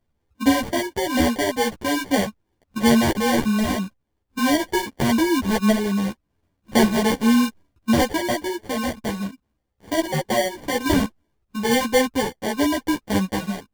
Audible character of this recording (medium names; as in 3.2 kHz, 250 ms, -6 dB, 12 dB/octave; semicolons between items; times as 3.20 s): aliases and images of a low sample rate 1.3 kHz, jitter 0%; random-step tremolo; a shimmering, thickened sound